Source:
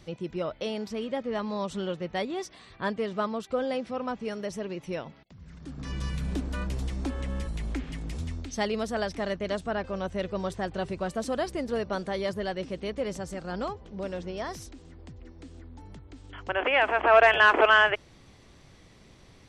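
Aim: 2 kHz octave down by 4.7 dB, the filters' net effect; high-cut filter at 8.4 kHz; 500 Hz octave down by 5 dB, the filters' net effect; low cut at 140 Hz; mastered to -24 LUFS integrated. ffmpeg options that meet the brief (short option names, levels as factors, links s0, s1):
-af "highpass=140,lowpass=8400,equalizer=f=500:t=o:g=-6.5,equalizer=f=2000:t=o:g=-6,volume=2.66"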